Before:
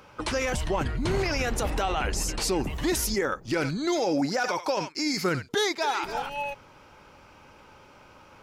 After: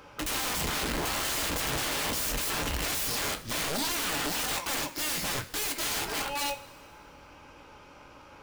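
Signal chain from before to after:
wrap-around overflow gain 27 dB
coupled-rooms reverb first 0.24 s, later 1.9 s, from −18 dB, DRR 6 dB

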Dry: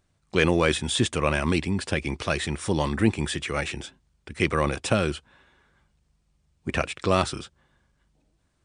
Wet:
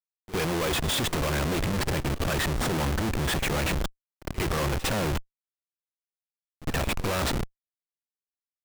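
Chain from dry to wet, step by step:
comparator with hysteresis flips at −31.5 dBFS
backwards echo 56 ms −17 dB
level +1 dB

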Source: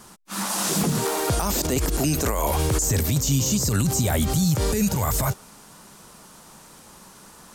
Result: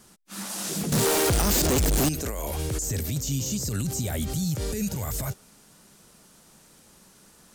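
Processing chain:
parametric band 1,000 Hz −7.5 dB 0.88 octaves
0:00.92–0:02.09: leveller curve on the samples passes 5
level −6.5 dB

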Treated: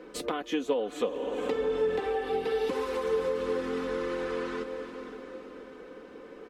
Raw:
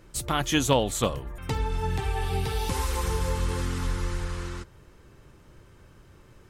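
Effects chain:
three-way crossover with the lows and the highs turned down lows −24 dB, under 200 Hz, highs −17 dB, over 4,000 Hz
comb filter 4 ms, depth 76%
on a send: feedback delay with all-pass diffusion 489 ms, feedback 46%, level −14 dB
on the sum: downward compressor 5 to 1, threshold −39 dBFS, peak gain reduction 20.5 dB
parametric band 410 Hz +13 dB 0.83 octaves
level +4 dB

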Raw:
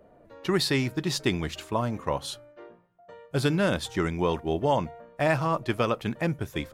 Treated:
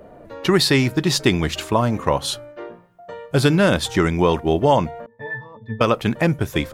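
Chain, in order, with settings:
in parallel at 0 dB: downward compressor, threshold −33 dBFS, peak gain reduction 13.5 dB
0:05.06–0:05.81: on the sum: resonances in every octave A, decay 0.26 s
level +6.5 dB

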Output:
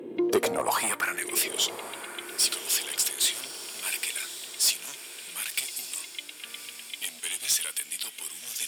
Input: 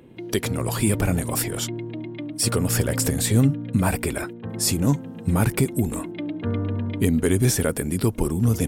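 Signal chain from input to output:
high-pass filter 110 Hz
low-shelf EQ 340 Hz +11 dB
in parallel at −6 dB: sine wavefolder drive 3 dB, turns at −6 dBFS
on the sum: high-pass filter sweep 380 Hz → 3,100 Hz, 0:00.19–0:01.51
soft clipping −12 dBFS, distortion −13 dB
feedback delay with all-pass diffusion 1,143 ms, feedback 51%, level −12 dB
on a send at −21 dB: convolution reverb, pre-delay 3 ms
on the sum: level −5 dB

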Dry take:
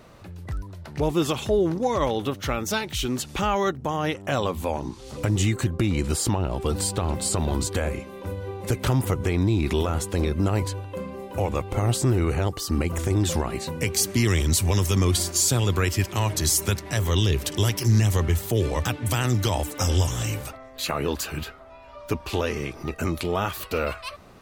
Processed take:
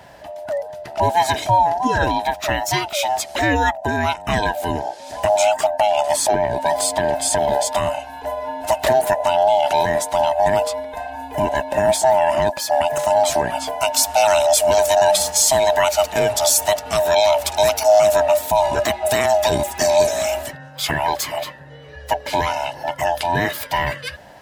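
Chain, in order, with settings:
neighbouring bands swapped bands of 500 Hz
high-pass filter 59 Hz
level +6 dB

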